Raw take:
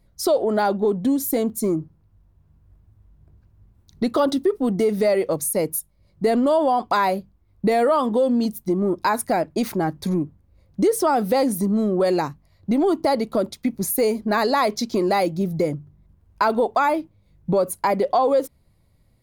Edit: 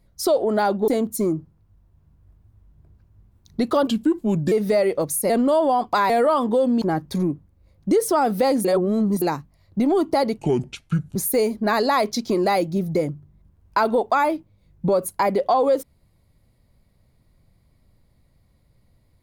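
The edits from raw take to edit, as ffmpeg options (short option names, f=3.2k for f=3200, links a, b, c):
-filter_complex "[0:a]asplit=11[a][b][c][d][e][f][g][h][i][j][k];[a]atrim=end=0.882[l];[b]atrim=start=1.308:end=4.304[m];[c]atrim=start=4.3:end=4.83,asetpts=PTS-STARTPTS,asetrate=36162,aresample=44100[n];[d]atrim=start=4.826:end=5.612[o];[e]atrim=start=6.278:end=7.082[p];[f]atrim=start=7.718:end=8.442[q];[g]atrim=start=9.728:end=11.562[r];[h]atrim=start=11.558:end=12.132,asetpts=PTS-STARTPTS,areverse[s];[i]atrim=start=12.128:end=13.304[t];[j]atrim=start=13.3:end=13.8,asetpts=PTS-STARTPTS,asetrate=28665,aresample=44100,atrim=end_sample=33923,asetpts=PTS-STARTPTS[u];[k]atrim=start=13.796[v];[l][m]acrossfade=d=0.004:c1=hsin:c2=hsin[w];[w][n]acrossfade=d=0.004:c1=hsin:c2=hsin[x];[x][o]acrossfade=d=0.004:c1=hsin:c2=hsin[y];[y][p]acrossfade=d=0.004:c1=hsin:c2=hsin[z];[z][q]acrossfade=d=0.004:c1=hsin:c2=hsin[aa];[aa][r]acrossfade=d=0.004:c1=hsin:c2=hsin[ab];[ab][s]acrossfade=d=0.004:c1=hsin:c2=hsin[ac];[ac][t]acrossfade=d=0.004:c1=hsin:c2=hsin[ad];[ad][u]acrossfade=d=0.004:c1=hsin:c2=hsin[ae];[ae][v]acrossfade=d=0.004:c1=hsin:c2=hsin"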